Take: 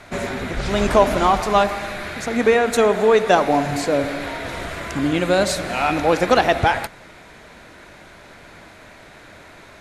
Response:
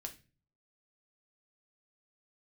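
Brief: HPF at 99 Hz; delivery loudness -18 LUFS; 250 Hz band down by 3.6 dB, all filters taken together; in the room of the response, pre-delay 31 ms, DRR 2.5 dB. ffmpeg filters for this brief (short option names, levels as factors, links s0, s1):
-filter_complex "[0:a]highpass=99,equalizer=f=250:t=o:g=-4.5,asplit=2[s0][s1];[1:a]atrim=start_sample=2205,adelay=31[s2];[s1][s2]afir=irnorm=-1:irlink=0,volume=1.12[s3];[s0][s3]amix=inputs=2:normalize=0"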